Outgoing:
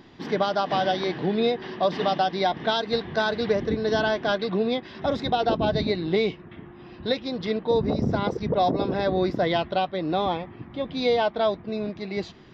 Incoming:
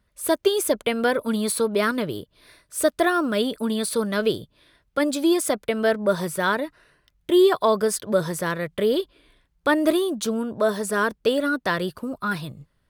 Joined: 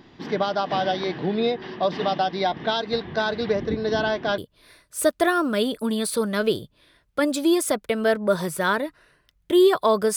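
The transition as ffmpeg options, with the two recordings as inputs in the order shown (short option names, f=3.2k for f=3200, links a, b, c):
-filter_complex "[0:a]apad=whole_dur=10.16,atrim=end=10.16,atrim=end=4.382[a];[1:a]atrim=start=2.168:end=7.95[b];[a][b]acrossfade=d=0.004:c1=hsin:c2=hsin"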